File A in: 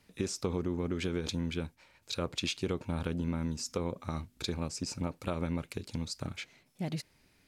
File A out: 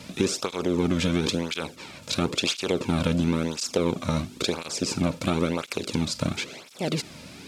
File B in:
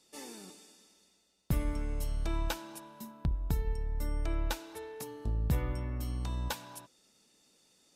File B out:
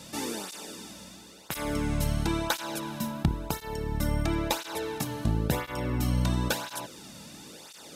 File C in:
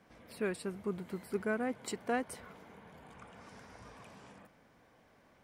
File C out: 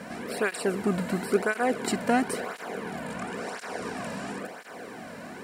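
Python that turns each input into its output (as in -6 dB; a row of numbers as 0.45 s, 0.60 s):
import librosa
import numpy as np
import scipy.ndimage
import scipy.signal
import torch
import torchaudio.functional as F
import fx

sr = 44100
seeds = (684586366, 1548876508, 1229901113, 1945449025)

y = fx.bin_compress(x, sr, power=0.6)
y = fx.flanger_cancel(y, sr, hz=0.97, depth_ms=2.8)
y = librosa.util.normalize(y) * 10.0 ** (-9 / 20.0)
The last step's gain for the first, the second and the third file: +9.5 dB, +9.5 dB, +11.5 dB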